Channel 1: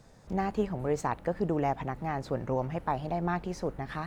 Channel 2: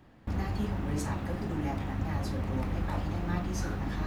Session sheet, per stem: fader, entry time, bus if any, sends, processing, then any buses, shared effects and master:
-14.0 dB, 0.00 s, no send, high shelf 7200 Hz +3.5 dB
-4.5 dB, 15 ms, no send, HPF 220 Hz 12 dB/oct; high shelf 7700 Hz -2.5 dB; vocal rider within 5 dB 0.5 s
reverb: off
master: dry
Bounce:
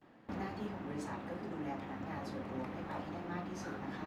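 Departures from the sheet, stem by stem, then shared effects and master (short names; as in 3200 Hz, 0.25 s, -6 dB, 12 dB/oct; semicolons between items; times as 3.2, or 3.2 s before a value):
stem 1 -14.0 dB -> -25.5 dB; master: extra high shelf 5000 Hz -10 dB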